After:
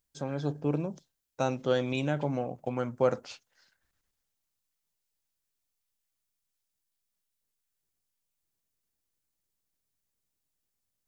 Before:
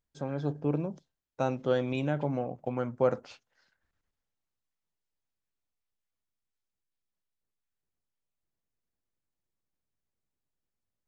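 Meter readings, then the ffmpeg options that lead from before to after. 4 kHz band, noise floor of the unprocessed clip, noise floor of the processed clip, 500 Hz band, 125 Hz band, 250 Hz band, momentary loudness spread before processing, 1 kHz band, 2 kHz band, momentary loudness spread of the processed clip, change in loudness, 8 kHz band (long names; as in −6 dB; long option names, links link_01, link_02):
+5.0 dB, below −85 dBFS, −83 dBFS, 0.0 dB, 0.0 dB, 0.0 dB, 8 LU, +0.5 dB, +2.5 dB, 11 LU, +0.5 dB, can't be measured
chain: -af "highshelf=frequency=3800:gain=11.5"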